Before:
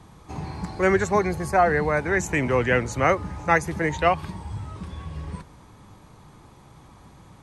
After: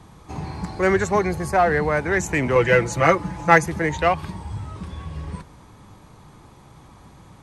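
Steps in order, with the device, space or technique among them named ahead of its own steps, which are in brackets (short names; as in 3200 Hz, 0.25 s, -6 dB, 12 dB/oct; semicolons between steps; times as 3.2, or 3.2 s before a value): parallel distortion (in parallel at -7.5 dB: hard clip -19 dBFS, distortion -9 dB); 2.55–3.66 on the sum: comb 6 ms, depth 86%; gain -1 dB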